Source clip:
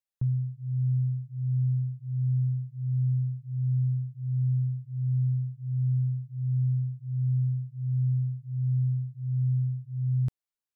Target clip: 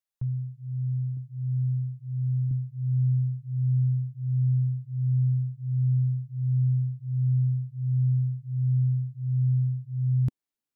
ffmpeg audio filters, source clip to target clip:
-af "asetnsamples=n=441:p=0,asendcmd='1.17 equalizer g -2;2.51 equalizer g 9.5',equalizer=f=260:t=o:w=1.2:g=-9.5"

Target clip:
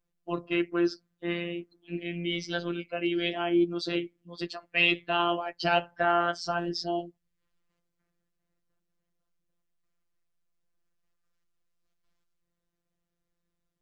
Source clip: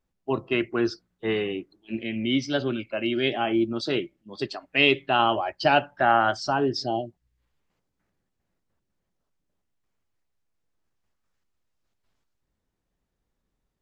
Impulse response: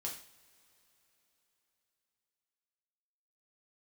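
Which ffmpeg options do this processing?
-af "afftfilt=real='hypot(re,im)*cos(PI*b)':imag='0':win_size=1024:overlap=0.75,bandreject=f=840:w=12"

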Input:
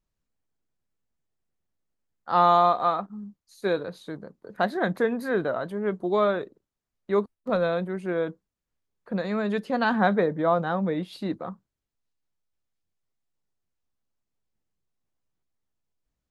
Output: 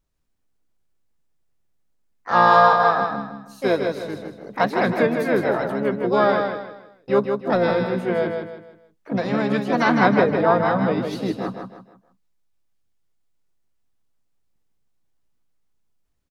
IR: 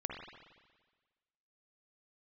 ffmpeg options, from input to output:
-filter_complex "[0:a]asplit=3[a][b][c];[b]asetrate=29433,aresample=44100,atempo=1.49831,volume=-11dB[d];[c]asetrate=58866,aresample=44100,atempo=0.749154,volume=-6dB[e];[a][d][e]amix=inputs=3:normalize=0,aecho=1:1:157|314|471|628:0.531|0.186|0.065|0.0228,volume=3.5dB"

